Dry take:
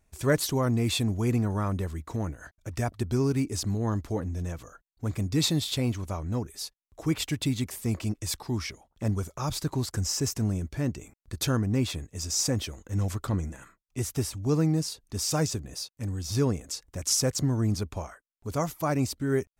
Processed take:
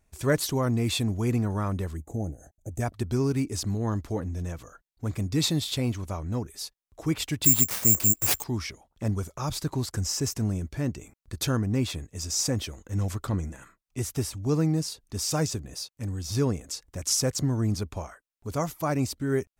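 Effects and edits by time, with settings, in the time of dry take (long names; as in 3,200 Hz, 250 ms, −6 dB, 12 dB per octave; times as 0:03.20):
0:01.97–0:02.80: gain on a spectral selection 840–6,000 Hz −20 dB
0:07.44–0:08.44: bad sample-rate conversion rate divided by 6×, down none, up zero stuff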